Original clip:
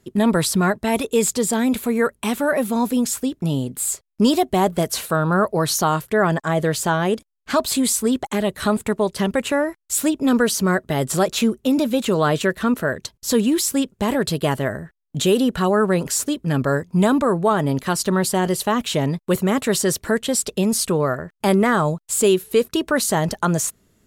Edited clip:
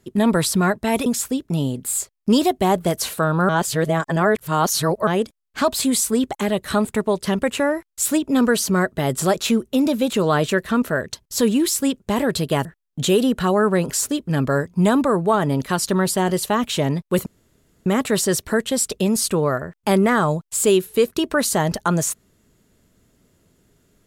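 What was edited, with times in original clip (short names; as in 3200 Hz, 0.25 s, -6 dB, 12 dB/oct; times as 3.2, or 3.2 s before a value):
1.06–2.98 cut
5.41–6.99 reverse
14.57–14.82 cut
19.43 insert room tone 0.60 s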